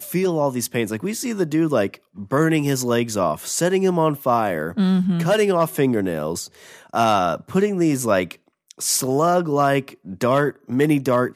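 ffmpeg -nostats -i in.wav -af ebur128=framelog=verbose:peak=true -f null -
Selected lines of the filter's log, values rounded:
Integrated loudness:
  I:         -20.4 LUFS
  Threshold: -30.7 LUFS
Loudness range:
  LRA:         1.8 LU
  Threshold: -40.6 LUFS
  LRA low:   -21.6 LUFS
  LRA high:  -19.8 LUFS
True peak:
  Peak:       -5.2 dBFS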